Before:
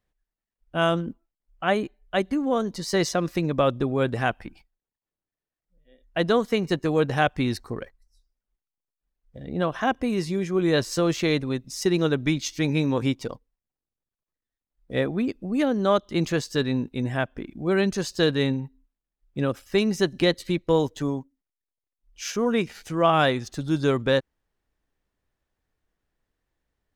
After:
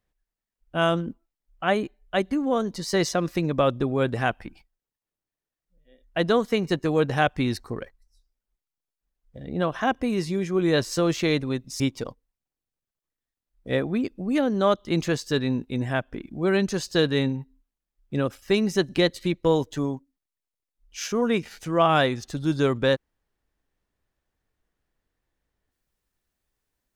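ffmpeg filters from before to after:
-filter_complex "[0:a]asplit=2[a][b];[a]atrim=end=11.802[c];[b]atrim=start=13.038[d];[c][d]acrossfade=d=0.004:c1=hsin:c2=hsin"

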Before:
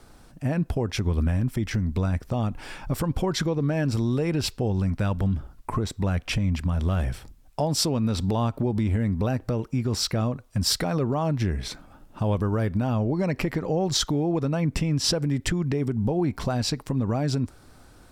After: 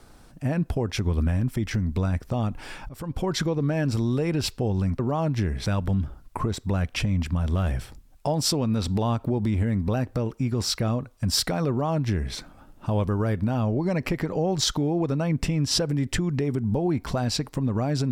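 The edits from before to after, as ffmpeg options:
-filter_complex "[0:a]asplit=4[a][b][c][d];[a]atrim=end=2.89,asetpts=PTS-STARTPTS,afade=t=out:st=2.886:d=0.004:c=hsin:silence=0.1[e];[b]atrim=start=2.89:end=4.992,asetpts=PTS-STARTPTS,afade=t=in:d=0.43:silence=0.1[f];[c]atrim=start=11.018:end=11.692[g];[d]atrim=start=4.988[h];[e][f]concat=n=2:v=0:a=1[i];[i][g]acrossfade=d=0.004:c1=hsin:c2=hsin[j];[j][h]acrossfade=d=0.004:c1=hsin:c2=hsin"

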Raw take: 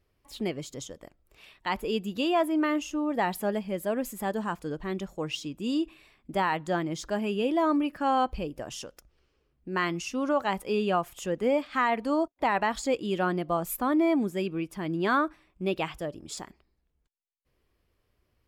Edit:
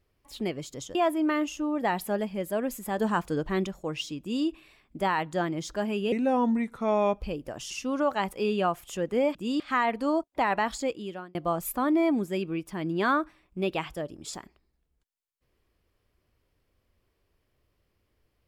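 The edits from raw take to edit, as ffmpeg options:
-filter_complex "[0:a]asplit=10[a][b][c][d][e][f][g][h][i][j];[a]atrim=end=0.952[k];[b]atrim=start=2.288:end=4.322[l];[c]atrim=start=4.318:end=5.012,asetpts=PTS-STARTPTS,volume=5dB[m];[d]atrim=start=5.008:end=7.464[n];[e]atrim=start=7.46:end=8.32,asetpts=PTS-STARTPTS,asetrate=34839,aresample=44100[o];[f]atrim=start=8.316:end=8.822[p];[g]atrim=start=9.998:end=11.642[q];[h]atrim=start=5.538:end=5.792[r];[i]atrim=start=11.638:end=13.39,asetpts=PTS-STARTPTS,afade=t=out:st=1.102:d=0.65[s];[j]atrim=start=13.39,asetpts=PTS-STARTPTS,afade=t=in:d=0.004:c=hsin[t];[k][l]acrossfade=d=0.004:c1=hsin:c2=hsin[u];[u][m]acrossfade=d=0.004:c1=hsin:c2=hsin[v];[v][n]acrossfade=d=0.004:c1=hsin:c2=hsin[w];[w][o]acrossfade=d=0.004:c1=hsin:c2=hsin[x];[x][p]acrossfade=d=0.004:c1=hsin:c2=hsin[y];[y][q]acrossfade=d=0.004:c1=hsin:c2=hsin[z];[z][r]acrossfade=d=0.004:c1=hsin:c2=hsin[aa];[s][t]concat=n=2:v=0:a=1[ab];[aa][ab]acrossfade=d=0.004:c1=hsin:c2=hsin"

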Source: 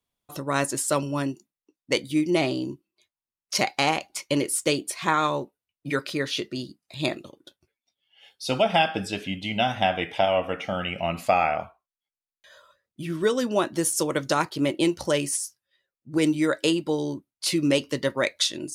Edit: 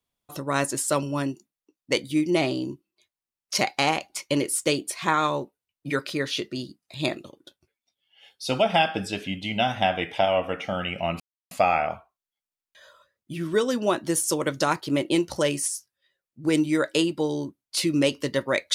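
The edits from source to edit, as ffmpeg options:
-filter_complex "[0:a]asplit=2[a][b];[a]atrim=end=11.2,asetpts=PTS-STARTPTS,afade=t=out:st=11.196:d=0.004:c=hsin,apad=pad_dur=0.31[c];[b]atrim=start=11.2,asetpts=PTS-STARTPTS,afade=t=in:d=0.004:c=hsin[d];[c][d]concat=n=2:v=0:a=1"

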